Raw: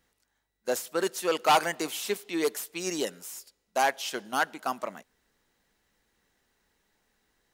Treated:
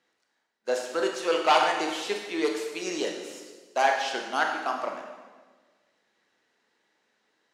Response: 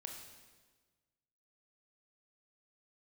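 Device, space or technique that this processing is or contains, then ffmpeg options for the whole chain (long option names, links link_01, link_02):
supermarket ceiling speaker: -filter_complex "[0:a]highpass=280,lowpass=5300[link_01];[1:a]atrim=start_sample=2205[link_02];[link_01][link_02]afir=irnorm=-1:irlink=0,volume=6.5dB"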